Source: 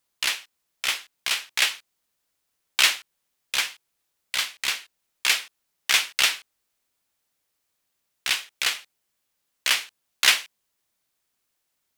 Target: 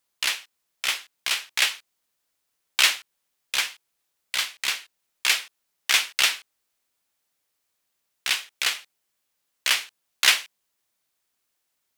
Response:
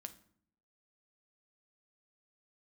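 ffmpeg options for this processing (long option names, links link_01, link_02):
-af "lowshelf=frequency=230:gain=-4.5"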